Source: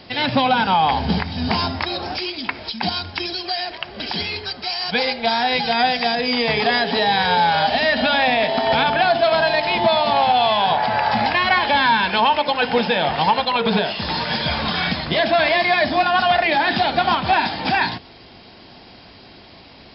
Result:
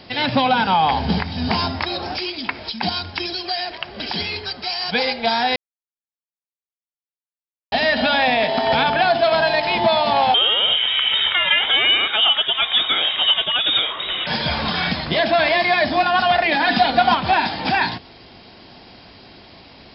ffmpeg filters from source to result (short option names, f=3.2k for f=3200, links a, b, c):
-filter_complex "[0:a]asettb=1/sr,asplit=3[a][b][c];[a]atrim=end=10.344[d];[b]atrim=start=10.34:end=14.27,asetpts=PTS-STARTPTS,afade=t=in:d=0.004:c=qsin,afade=t=out:st=3.926:d=0.004:c=qsin,lowpass=f=3.3k:t=q:w=0.5098,lowpass=f=3.3k:t=q:w=0.6013,lowpass=f=3.3k:t=q:w=0.9,lowpass=f=3.3k:t=q:w=2.563,afreqshift=-3900[e];[c]atrim=start=14.266[f];[d][e]acrossfade=d=0.004:c1=hsin:c2=qsin[g];[g][f]acrossfade=d=0.004:c1=qsin:c2=hsin,asettb=1/sr,asplit=3[h][i][j];[h]atrim=end=16.524[k];[i]atrim=start=16.52:end=17.14,asetpts=PTS-STARTPTS,afade=t=in:d=0.004:c=qsin,afade=t=out:st=0.616:d=0.004:c=qsin,aecho=1:1:4.1:0.65,atrim=end_sample=27342[l];[j]atrim=start=17.136[m];[k][l]acrossfade=d=0.004:c1=hsin:c2=qsin[n];[n][m]acrossfade=d=0.004:c1=qsin:c2=hsin,asplit=3[o][p][q];[o]atrim=end=5.56,asetpts=PTS-STARTPTS,afade=t=out:st=5.556:d=0.004:c=hsin[r];[p]atrim=start=5.56:end=7.72,asetpts=PTS-STARTPTS,volume=0[s];[q]atrim=start=7.72,asetpts=PTS-STARTPTS,afade=t=in:d=0.004:c=hsin[t];[r][s][t]concat=n=3:v=0:a=1"